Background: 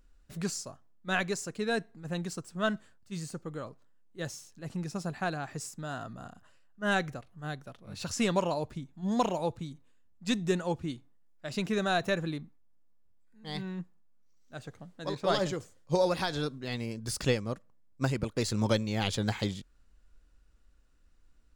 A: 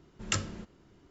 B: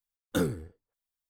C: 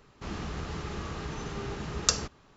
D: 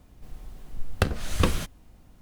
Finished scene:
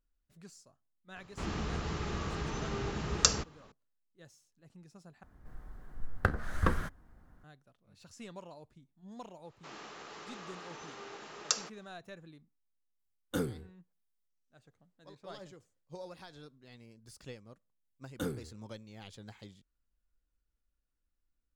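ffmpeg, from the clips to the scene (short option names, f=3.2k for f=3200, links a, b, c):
-filter_complex "[3:a]asplit=2[a][b];[2:a]asplit=2[c][d];[0:a]volume=-19.5dB[e];[4:a]firequalizer=gain_entry='entry(610,0);entry(1600,9);entry(2500,-10)':delay=0.05:min_phase=1[f];[b]highpass=450[g];[e]asplit=2[h][i];[h]atrim=end=5.234[j];[f]atrim=end=2.21,asetpts=PTS-STARTPTS,volume=-6.5dB[k];[i]atrim=start=7.436[l];[a]atrim=end=2.56,asetpts=PTS-STARTPTS,afade=t=in:d=0.004:c=hsin,afade=t=out:st=2.556:d=0.004:c=hsin,adelay=1160[m];[g]atrim=end=2.56,asetpts=PTS-STARTPTS,volume=-6dB,afade=t=in:d=0.1,afade=t=out:st=2.46:d=0.1,adelay=9420[n];[c]atrim=end=1.29,asetpts=PTS-STARTPTS,volume=-6dB,afade=t=in:d=0.004:c=hsin,afade=t=out:st=1.286:d=0.004:c=hsin,adelay=12990[o];[d]atrim=end=1.29,asetpts=PTS-STARTPTS,volume=-9dB,afade=t=in:d=0.004:c=hsin,afade=t=out:st=1.286:d=0.004:c=hsin,adelay=17850[p];[j][k]acrossfade=d=0.004:c1=hsin:c2=hsin[q];[q][l]acrossfade=d=0.004:c1=hsin:c2=hsin[r];[r][m][n][o][p]amix=inputs=5:normalize=0"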